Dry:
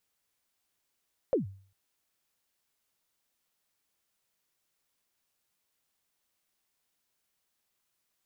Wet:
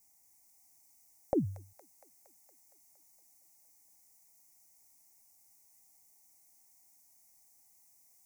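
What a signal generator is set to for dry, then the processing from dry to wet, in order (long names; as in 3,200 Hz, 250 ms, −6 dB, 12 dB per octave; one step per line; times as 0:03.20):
synth kick length 0.40 s, from 590 Hz, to 97 Hz, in 129 ms, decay 0.47 s, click off, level −20 dB
drawn EQ curve 130 Hz 0 dB, 190 Hz −3 dB, 310 Hz +2 dB, 470 Hz −13 dB, 790 Hz +6 dB, 1,500 Hz −20 dB, 2,100 Hz −1 dB, 3,200 Hz −23 dB, 5,900 Hz +7 dB
in parallel at +2 dB: downward compressor, threshold −38 dBFS
on the sum: delay with a high-pass on its return 232 ms, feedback 68%, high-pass 1,900 Hz, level −5.5 dB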